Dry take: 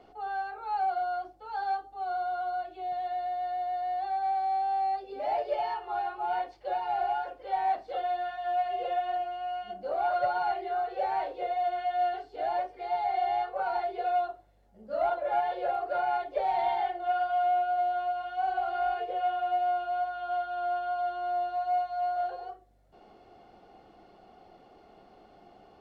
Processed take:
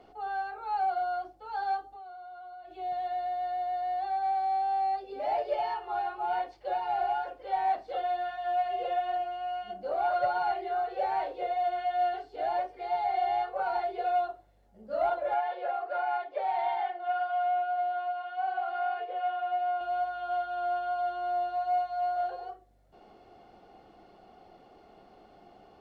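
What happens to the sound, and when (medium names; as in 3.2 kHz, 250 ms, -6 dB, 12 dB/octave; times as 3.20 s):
1.89–2.71 s: compression 12:1, threshold -43 dBFS
15.34–19.81 s: band-pass filter 1.4 kHz, Q 0.56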